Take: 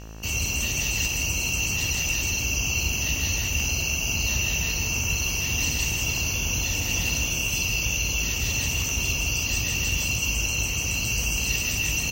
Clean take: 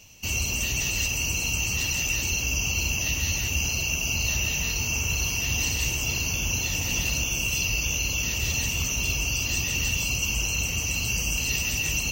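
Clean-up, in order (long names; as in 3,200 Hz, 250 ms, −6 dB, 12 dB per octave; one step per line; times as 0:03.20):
click removal
hum removal 54.4 Hz, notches 35
echo removal 161 ms −7 dB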